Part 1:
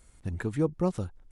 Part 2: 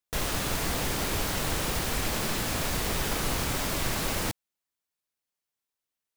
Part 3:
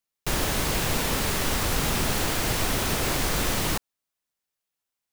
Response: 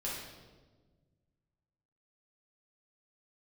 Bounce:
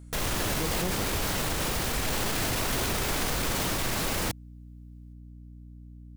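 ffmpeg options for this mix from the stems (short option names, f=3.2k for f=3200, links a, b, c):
-filter_complex "[0:a]volume=-2.5dB[a];[1:a]aeval=exprs='val(0)+0.00501*(sin(2*PI*60*n/s)+sin(2*PI*2*60*n/s)/2+sin(2*PI*3*60*n/s)/3+sin(2*PI*4*60*n/s)/4+sin(2*PI*5*60*n/s)/5)':c=same,volume=1.5dB[b];[2:a]volume=0.5dB,asplit=3[c][d][e];[c]atrim=end=0.82,asetpts=PTS-STARTPTS,afade=t=out:st=0.816:d=0.004:c=hsin[f];[d]atrim=start=0.82:end=2.07,asetpts=PTS-STARTPTS,volume=0[g];[e]atrim=start=2.07,asetpts=PTS-STARTPTS,afade=t=in:d=0.004:c=hsin[h];[f][g][h]concat=n=3:v=0:a=1[i];[a][b][i]amix=inputs=3:normalize=0,alimiter=limit=-19.5dB:level=0:latency=1:release=13"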